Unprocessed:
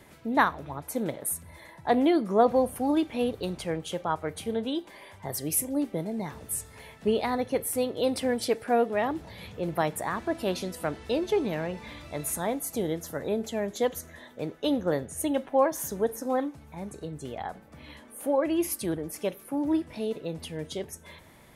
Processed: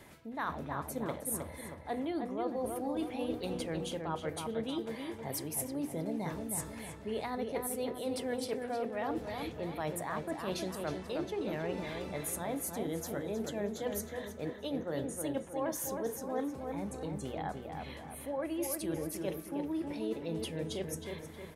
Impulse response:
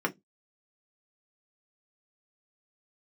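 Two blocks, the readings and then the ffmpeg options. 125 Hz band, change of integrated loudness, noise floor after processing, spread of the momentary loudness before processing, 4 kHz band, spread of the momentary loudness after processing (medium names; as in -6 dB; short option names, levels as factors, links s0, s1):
-4.0 dB, -8.5 dB, -47 dBFS, 14 LU, -6.5 dB, 4 LU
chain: -filter_complex "[0:a]bandreject=f=60:t=h:w=6,bandreject=f=120:t=h:w=6,bandreject=f=180:t=h:w=6,bandreject=f=240:t=h:w=6,bandreject=f=300:t=h:w=6,bandreject=f=360:t=h:w=6,bandreject=f=420:t=h:w=6,bandreject=f=480:t=h:w=6,areverse,acompressor=threshold=0.0224:ratio=6,areverse,asplit=2[s0][s1];[s1]adelay=315,lowpass=f=2600:p=1,volume=0.596,asplit=2[s2][s3];[s3]adelay=315,lowpass=f=2600:p=1,volume=0.5,asplit=2[s4][s5];[s5]adelay=315,lowpass=f=2600:p=1,volume=0.5,asplit=2[s6][s7];[s7]adelay=315,lowpass=f=2600:p=1,volume=0.5,asplit=2[s8][s9];[s9]adelay=315,lowpass=f=2600:p=1,volume=0.5,asplit=2[s10][s11];[s11]adelay=315,lowpass=f=2600:p=1,volume=0.5[s12];[s0][s2][s4][s6][s8][s10][s12]amix=inputs=7:normalize=0,volume=0.891"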